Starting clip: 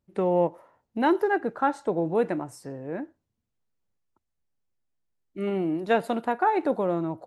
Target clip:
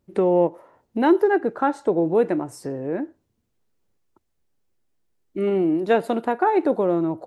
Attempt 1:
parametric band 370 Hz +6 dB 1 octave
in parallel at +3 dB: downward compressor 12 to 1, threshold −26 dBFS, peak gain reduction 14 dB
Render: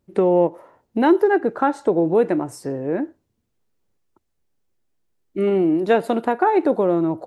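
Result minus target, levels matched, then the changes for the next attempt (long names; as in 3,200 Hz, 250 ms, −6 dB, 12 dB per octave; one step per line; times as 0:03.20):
downward compressor: peak gain reduction −9 dB
change: downward compressor 12 to 1, threshold −36 dBFS, peak gain reduction 23.5 dB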